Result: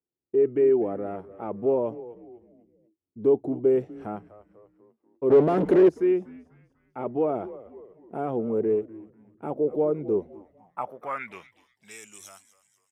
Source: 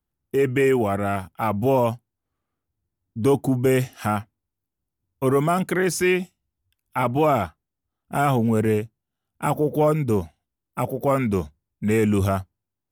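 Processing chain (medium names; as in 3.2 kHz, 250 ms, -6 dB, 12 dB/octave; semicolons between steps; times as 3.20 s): frequency-shifting echo 246 ms, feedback 47%, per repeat -110 Hz, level -16.5 dB; 5.30–5.89 s: waveshaping leveller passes 5; band-pass sweep 400 Hz -> 6.9 kHz, 10.23–12.08 s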